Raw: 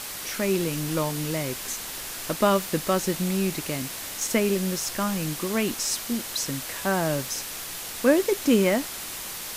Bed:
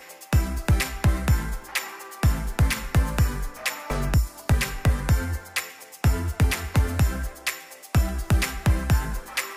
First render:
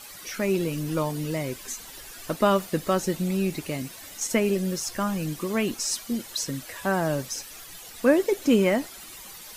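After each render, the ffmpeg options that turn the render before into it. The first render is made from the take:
-af "afftdn=nr=12:nf=-36"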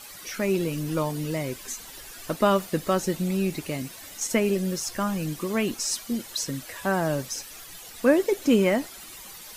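-af anull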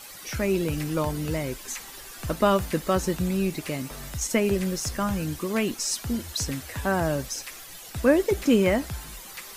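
-filter_complex "[1:a]volume=-14.5dB[a];[0:a][a]amix=inputs=2:normalize=0"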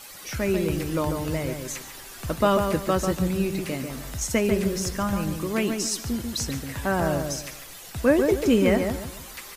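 -filter_complex "[0:a]asplit=2[a][b];[b]adelay=143,lowpass=f=2k:p=1,volume=-5dB,asplit=2[c][d];[d]adelay=143,lowpass=f=2k:p=1,volume=0.32,asplit=2[e][f];[f]adelay=143,lowpass=f=2k:p=1,volume=0.32,asplit=2[g][h];[h]adelay=143,lowpass=f=2k:p=1,volume=0.32[i];[a][c][e][g][i]amix=inputs=5:normalize=0"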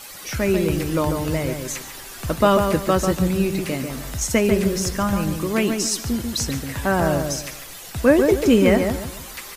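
-af "volume=4.5dB"

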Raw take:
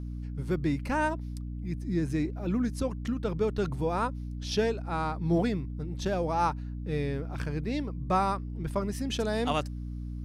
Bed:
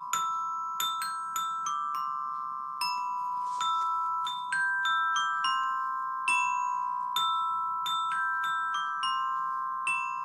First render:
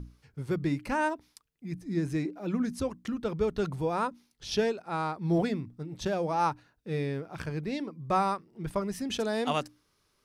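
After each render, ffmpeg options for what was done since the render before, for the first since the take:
-af "bandreject=f=60:t=h:w=6,bandreject=f=120:t=h:w=6,bandreject=f=180:t=h:w=6,bandreject=f=240:t=h:w=6,bandreject=f=300:t=h:w=6"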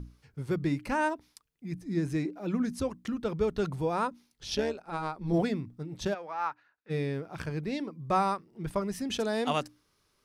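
-filter_complex "[0:a]asettb=1/sr,asplit=3[a][b][c];[a]atrim=end=4.554[d];[b]atrim=start=4.55:end=5.34,asetpts=PTS-STARTPTS,afade=t=in:d=0.004:c=qsin,afade=t=out:st=0.786:d=0.004:c=qsin,tremolo=f=150:d=0.667[e];[c]atrim=start=5.336[f];[d][e]acrossfade=d=0.004:c1=hsin:c2=qsin[g];[g][f]acrossfade=d=0.004:c1=qsin:c2=hsin,asplit=3[h][i][j];[h]afade=t=out:st=6.13:d=0.02[k];[i]bandpass=f=1.6k:t=q:w=1.4,afade=t=in:st=6.13:d=0.02,afade=t=out:st=6.89:d=0.02[l];[j]afade=t=in:st=6.89:d=0.02[m];[k][l][m]amix=inputs=3:normalize=0"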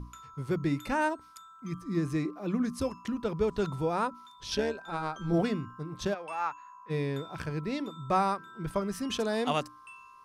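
-filter_complex "[1:a]volume=-20dB[a];[0:a][a]amix=inputs=2:normalize=0"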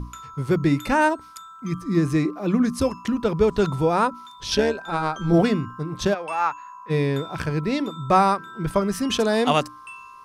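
-af "volume=9.5dB"

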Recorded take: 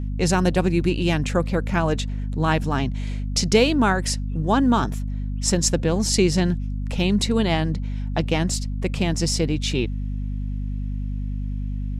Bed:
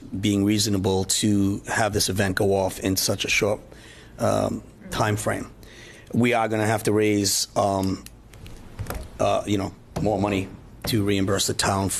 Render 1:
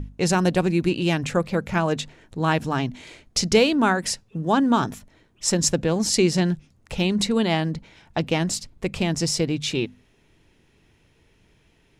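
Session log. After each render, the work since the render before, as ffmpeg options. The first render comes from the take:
-af "bandreject=f=50:t=h:w=6,bandreject=f=100:t=h:w=6,bandreject=f=150:t=h:w=6,bandreject=f=200:t=h:w=6,bandreject=f=250:t=h:w=6"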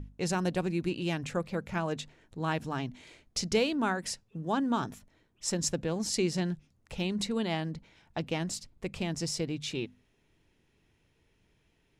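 -af "volume=-10dB"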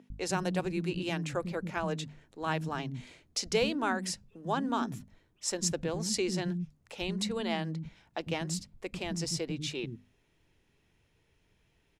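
-filter_complex "[0:a]acrossover=split=260[a][b];[a]adelay=100[c];[c][b]amix=inputs=2:normalize=0"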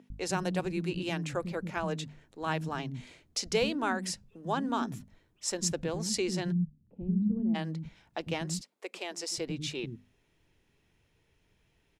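-filter_complex "[0:a]asplit=3[a][b][c];[a]afade=t=out:st=6.51:d=0.02[d];[b]lowpass=f=220:t=q:w=2.5,afade=t=in:st=6.51:d=0.02,afade=t=out:st=7.54:d=0.02[e];[c]afade=t=in:st=7.54:d=0.02[f];[d][e][f]amix=inputs=3:normalize=0,asettb=1/sr,asplit=3[g][h][i];[g]atrim=end=8.614[j];[h]atrim=start=8.61:end=9.38,asetpts=PTS-STARTPTS,afade=t=in:d=0.004:c=qsin,afade=t=out:st=0.766:d=0.004:c=qsin,highpass=f=370:w=0.5412,highpass=f=370:w=1.3066[k];[i]atrim=start=9.376[l];[j][k]acrossfade=d=0.004:c1=hsin:c2=qsin[m];[m][l]acrossfade=d=0.004:c1=qsin:c2=hsin"

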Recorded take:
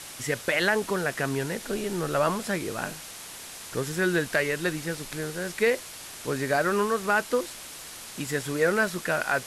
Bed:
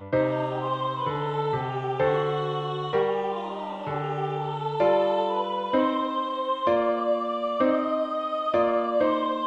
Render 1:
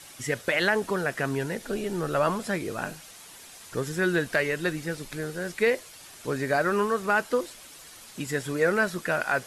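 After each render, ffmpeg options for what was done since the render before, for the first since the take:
-af "afftdn=nr=8:nf=-42"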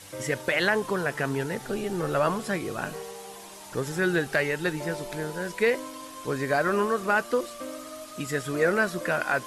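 -filter_complex "[1:a]volume=-15.5dB[a];[0:a][a]amix=inputs=2:normalize=0"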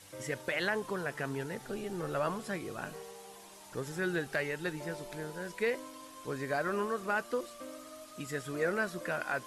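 -af "volume=-8.5dB"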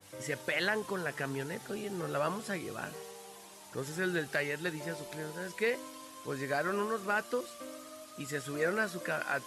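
-af "highpass=61,adynamicequalizer=threshold=0.00398:dfrequency=1800:dqfactor=0.7:tfrequency=1800:tqfactor=0.7:attack=5:release=100:ratio=0.375:range=1.5:mode=boostabove:tftype=highshelf"

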